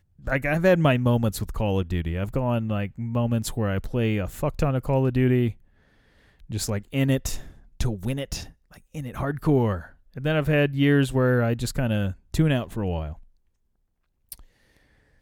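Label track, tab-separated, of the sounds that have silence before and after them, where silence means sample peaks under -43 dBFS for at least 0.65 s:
6.420000	13.230000	sound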